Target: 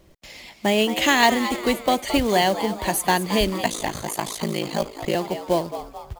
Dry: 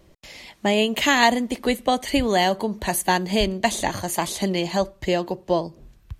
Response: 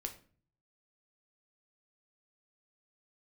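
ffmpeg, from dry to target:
-filter_complex "[0:a]asplit=6[link_01][link_02][link_03][link_04][link_05][link_06];[link_02]adelay=220,afreqshift=110,volume=-11.5dB[link_07];[link_03]adelay=440,afreqshift=220,volume=-17.7dB[link_08];[link_04]adelay=660,afreqshift=330,volume=-23.9dB[link_09];[link_05]adelay=880,afreqshift=440,volume=-30.1dB[link_10];[link_06]adelay=1100,afreqshift=550,volume=-36.3dB[link_11];[link_01][link_07][link_08][link_09][link_10][link_11]amix=inputs=6:normalize=0,asettb=1/sr,asplit=3[link_12][link_13][link_14];[link_12]atrim=end=3.634[link_15];[link_13]atrim=start=3.63:end=5.15,asetpts=PTS-STARTPTS,afade=type=in:duration=0.004:curve=qsin,afade=type=out:start_time=1.516:duration=0.004:curve=qsin,aeval=exprs='val(0)*sin(2*PI*27*n/s)':channel_layout=same[link_16];[link_14]atrim=start=5.146[link_17];[link_15][link_16]acrossfade=duration=0.004:curve1=hsin:curve2=qsin[link_18];[link_18][link_17]acrossfade=duration=0.004:curve1=qsin:curve2=hsin,acrusher=bits=4:mode=log:mix=0:aa=0.000001"

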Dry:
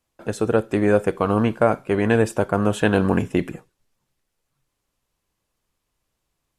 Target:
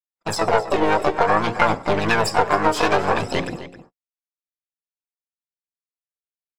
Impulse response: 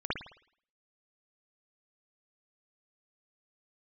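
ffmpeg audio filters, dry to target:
-filter_complex "[0:a]aphaser=in_gain=1:out_gain=1:delay=3.3:decay=0.63:speed=0.55:type=triangular,lowpass=frequency=5100:width_type=q:width=15,aeval=exprs='(tanh(4.47*val(0)+0.75)-tanh(0.75))/4.47':channel_layout=same,bandreject=frequency=60:width_type=h:width=6,bandreject=frequency=120:width_type=h:width=6,bandreject=frequency=180:width_type=h:width=6,bandreject=frequency=240:width_type=h:width=6,bandreject=frequency=300:width_type=h:width=6,bandreject=frequency=360:width_type=h:width=6,bandreject=frequency=420:width_type=h:width=6,bandreject=frequency=480:width_type=h:width=6,bandreject=frequency=540:width_type=h:width=6,acompressor=threshold=-19dB:ratio=20,asplit=3[link_01][link_02][link_03];[link_02]asetrate=66075,aresample=44100,atempo=0.66742,volume=-2dB[link_04];[link_03]asetrate=88200,aresample=44100,atempo=0.5,volume=-14dB[link_05];[link_01][link_04][link_05]amix=inputs=3:normalize=0,equalizer=frequency=1000:width_type=o:width=1.8:gain=9.5,agate=range=-58dB:threshold=-34dB:ratio=16:detection=peak,asplit=2[link_06][link_07];[link_07]adelay=262.4,volume=-13dB,highshelf=frequency=4000:gain=-5.9[link_08];[link_06][link_08]amix=inputs=2:normalize=0"

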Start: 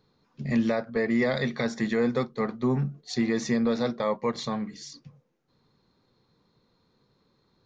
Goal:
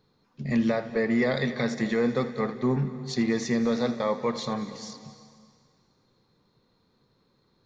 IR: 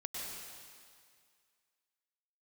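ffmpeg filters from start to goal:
-filter_complex "[0:a]asplit=2[link_01][link_02];[1:a]atrim=start_sample=2205,adelay=81[link_03];[link_02][link_03]afir=irnorm=-1:irlink=0,volume=-11dB[link_04];[link_01][link_04]amix=inputs=2:normalize=0"

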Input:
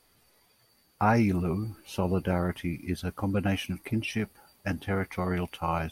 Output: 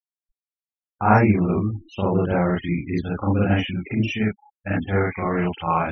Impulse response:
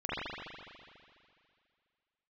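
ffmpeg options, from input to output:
-filter_complex "[1:a]atrim=start_sample=2205,atrim=end_sample=3528[link_01];[0:a][link_01]afir=irnorm=-1:irlink=0,afftfilt=real='re*gte(hypot(re,im),0.0126)':imag='im*gte(hypot(re,im),0.0126)':win_size=1024:overlap=0.75,volume=4.5dB"

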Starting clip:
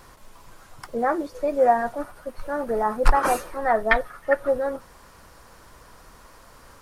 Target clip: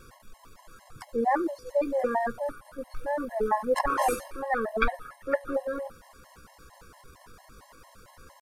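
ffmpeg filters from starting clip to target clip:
ffmpeg -i in.wav -af "atempo=0.81,afftfilt=real='re*gt(sin(2*PI*4.4*pts/sr)*(1-2*mod(floor(b*sr/1024/550),2)),0)':imag='im*gt(sin(2*PI*4.4*pts/sr)*(1-2*mod(floor(b*sr/1024/550),2)),0)':win_size=1024:overlap=0.75" out.wav

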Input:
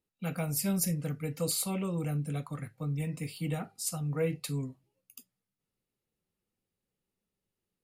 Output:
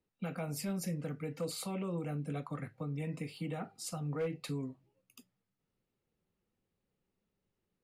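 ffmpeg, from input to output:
ffmpeg -i in.wav -filter_complex "[0:a]acrossover=split=180[link_01][link_02];[link_01]acompressor=threshold=-49dB:ratio=6[link_03];[link_03][link_02]amix=inputs=2:normalize=0,aemphasis=mode=reproduction:type=75kf,asoftclip=type=hard:threshold=-26dB,alimiter=level_in=9.5dB:limit=-24dB:level=0:latency=1:release=247,volume=-9.5dB,volume=4dB" out.wav

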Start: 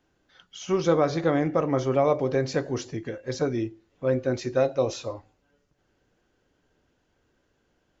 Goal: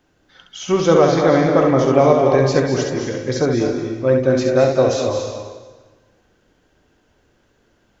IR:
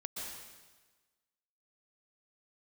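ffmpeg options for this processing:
-filter_complex "[0:a]asplit=2[link_01][link_02];[1:a]atrim=start_sample=2205,adelay=67[link_03];[link_02][link_03]afir=irnorm=-1:irlink=0,volume=-1dB[link_04];[link_01][link_04]amix=inputs=2:normalize=0,volume=7.5dB"

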